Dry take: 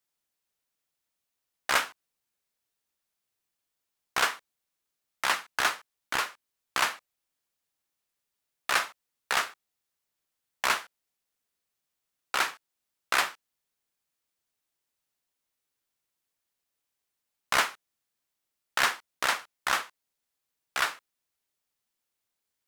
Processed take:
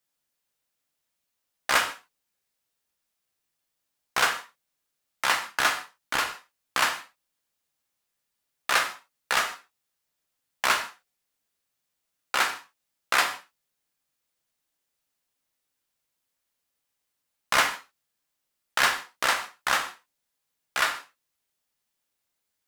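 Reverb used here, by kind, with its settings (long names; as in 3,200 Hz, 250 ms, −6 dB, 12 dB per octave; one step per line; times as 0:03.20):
reverb whose tail is shaped and stops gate 180 ms falling, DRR 5.5 dB
level +2 dB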